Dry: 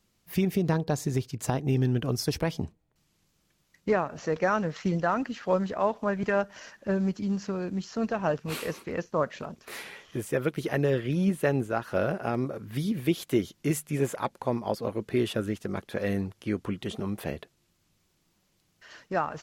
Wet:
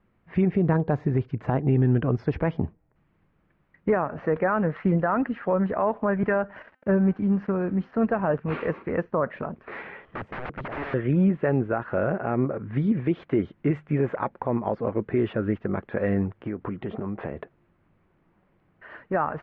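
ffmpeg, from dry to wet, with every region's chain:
-filter_complex "[0:a]asettb=1/sr,asplit=3[a][b][c];[a]atrim=end=6.624[d];[b]atrim=start=6.62:end=7.94,asetpts=PTS-STARTPTS,afade=t=in:d=0.004:c=qsin,afade=t=out:st=1.316:d=0.004:c=qsin,agate=range=-7dB:threshold=-46dB:ratio=16:release=100:detection=peak,aeval=exprs='val(0)*gte(abs(val(0)),0.00266)':c=same,bandreject=f=257.8:t=h:w=4,bandreject=f=515.6:t=h:w=4,bandreject=f=773.4:t=h:w=4,bandreject=f=1.0312k:t=h:w=4,bandreject=f=1.289k:t=h:w=4,bandreject=f=1.5468k:t=h:w=4,bandreject=f=1.8046k:t=h:w=4,bandreject=f=2.0624k:t=h:w=4,bandreject=f=2.3202k:t=h:w=4,bandreject=f=2.578k:t=h:w=4,bandreject=f=2.8358k:t=h:w=4,bandreject=f=3.0936k:t=h:w=4,bandreject=f=3.3514k:t=h:w=4,bandreject=f=3.6092k:t=h:w=4,bandreject=f=3.867k:t=h:w=4,bandreject=f=4.1248k:t=h:w=4,bandreject=f=4.3826k:t=h:w=4,bandreject=f=4.6404k:t=h:w=4,bandreject=f=4.8982k:t=h:w=4,bandreject=f=5.156k:t=h:w=4,bandreject=f=5.4138k:t=h:w=4,bandreject=f=5.6716k:t=h:w=4,bandreject=f=5.9294k:t=h:w=4,bandreject=f=6.1872k:t=h:w=4,bandreject=f=6.445k:t=h:w=4,bandreject=f=6.7028k:t=h:w=4,bandreject=f=6.9606k:t=h:w=4,bandreject=f=7.2184k:t=h:w=4,bandreject=f=7.4762k:t=h:w=4,bandreject=f=7.734k:t=h:w=4,bandreject=f=7.9918k:t=h:w=4,bandreject=f=8.2496k:t=h:w=4,bandreject=f=8.5074k:t=h:w=4,bandreject=f=8.7652k:t=h:w=4,bandreject=f=9.023k:t=h:w=4,bandreject=f=9.2808k:t=h:w=4,bandreject=f=9.5386k:t=h:w=4,bandreject=f=9.7964k:t=h:w=4[e];[c]atrim=start=7.936[f];[d][e]acrossfade=d=0.004:c1=hsin:c2=qsin[g];[g][f]acrossfade=d=0.004:c1=qsin:c2=hsin,asettb=1/sr,asplit=3[h][i][j];[h]atrim=end=10.054[k];[i]atrim=start=10.05:end=10.94,asetpts=PTS-STARTPTS,afade=t=in:d=0.004:c=qsin,afade=t=out:st=0.886:d=0.004:c=qsin,equalizer=f=2.2k:w=0.56:g=-8.5,aeval=exprs='(mod(37.6*val(0)+1,2)-1)/37.6':c=same[l];[j]atrim=start=10.936[m];[k][l]acrossfade=d=0.004:c1=hsin:c2=qsin[n];[n][m]acrossfade=d=0.004:c1=qsin:c2=hsin,asettb=1/sr,asplit=3[o][p][q];[o]atrim=end=16.404[r];[p]atrim=start=16.4:end=18.97,asetpts=PTS-STARTPTS,afade=t=in:d=0.004:c=qsin,afade=t=out:st=2.566:d=0.004:c=qsin,equalizer=f=530:w=0.39:g=3.5,acompressor=threshold=-33dB:ratio=5:attack=3.2:release=140:knee=1:detection=peak[s];[q]atrim=start=18.966[t];[r][s]acrossfade=d=0.004:c1=hsin:c2=qsin[u];[u][t]acrossfade=d=0.004:c1=qsin:c2=hsin,lowpass=f=2k:w=0.5412,lowpass=f=2k:w=1.3066,alimiter=limit=-19.5dB:level=0:latency=1:release=52,volume=6dB"

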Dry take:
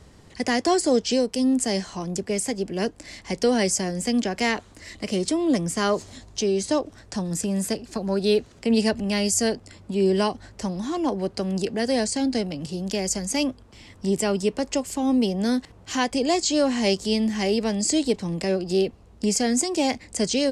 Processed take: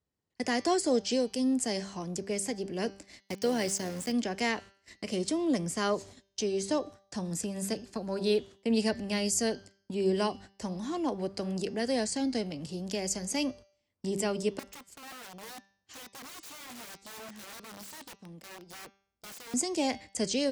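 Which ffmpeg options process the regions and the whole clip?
-filter_complex "[0:a]asettb=1/sr,asplit=3[a][b][c];[a]atrim=end=3.204[d];[b]atrim=start=3.2:end=4.12,asetpts=PTS-STARTPTS,afade=t=in:d=0.004:c=qsin,afade=t=out:st=0.916:d=0.004:c=qsin,tremolo=f=78:d=0.333,aeval=exprs='val(0)*gte(abs(val(0)),0.0224)':c=same[e];[c]atrim=start=4.116[f];[d][e]acrossfade=d=0.004:c1=hsin:c2=qsin[g];[g][f]acrossfade=d=0.004:c1=qsin:c2=hsin,asettb=1/sr,asplit=3[h][i][j];[h]atrim=end=14.594[k];[i]atrim=start=14.59:end=19.54,asetpts=PTS-STARTPTS,afade=t=in:d=0.004:c=qsin,afade=t=out:st=4.946:d=0.004:c=qsin,aeval=exprs='(mod(11.2*val(0)+1,2)-1)/11.2':c=same,acompressor=threshold=-36dB:ratio=10:attack=3.2:release=140:knee=1:detection=peak[l];[j]atrim=start=19.536[m];[k][l]acrossfade=d=0.004:c1=hsin:c2=qsin[n];[n][m]acrossfade=d=0.004:c1=qsin:c2=hsin,agate=range=-29dB:threshold=-39dB:ratio=16:detection=peak,highpass=f=84:p=1,bandreject=f=196.4:t=h:w=4,bandreject=f=392.8:t=h:w=4,bandreject=f=589.2:t=h:w=4,bandreject=f=785.6:t=h:w=4,bandreject=f=982:t=h:w=4,bandreject=f=1.1784k:t=h:w=4,bandreject=f=1.3748k:t=h:w=4,bandreject=f=1.5712k:t=h:w=4,bandreject=f=1.7676k:t=h:w=4,bandreject=f=1.964k:t=h:w=4,bandreject=f=2.1604k:t=h:w=4,bandreject=f=2.3568k:t=h:w=4,bandreject=f=2.5532k:t=h:w=4,bandreject=f=2.7496k:t=h:w=4,bandreject=f=2.946k:t=h:w=4,bandreject=f=3.1424k:t=h:w=4,bandreject=f=3.3388k:t=h:w=4,bandreject=f=3.5352k:t=h:w=4,bandreject=f=3.7316k:t=h:w=4,bandreject=f=3.928k:t=h:w=4,bandreject=f=4.1244k:t=h:w=4,bandreject=f=4.3208k:t=h:w=4,bandreject=f=4.5172k:t=h:w=4,bandreject=f=4.7136k:t=h:w=4,bandreject=f=4.91k:t=h:w=4,bandreject=f=5.1064k:t=h:w=4,bandreject=f=5.3028k:t=h:w=4,bandreject=f=5.4992k:t=h:w=4,bandreject=f=5.6956k:t=h:w=4,bandreject=f=5.892k:t=h:w=4,bandreject=f=6.0884k:t=h:w=4,bandreject=f=6.2848k:t=h:w=4,bandreject=f=6.4812k:t=h:w=4,volume=-6.5dB"

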